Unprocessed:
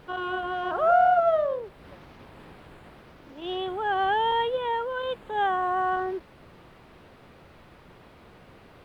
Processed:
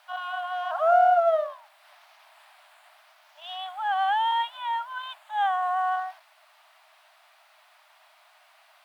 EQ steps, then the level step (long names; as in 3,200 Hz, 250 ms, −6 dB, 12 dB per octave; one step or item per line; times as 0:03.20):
dynamic equaliser 780 Hz, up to +5 dB, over −36 dBFS, Q 1
linear-phase brick-wall high-pass 590 Hz
high-shelf EQ 3,500 Hz +10 dB
−4.5 dB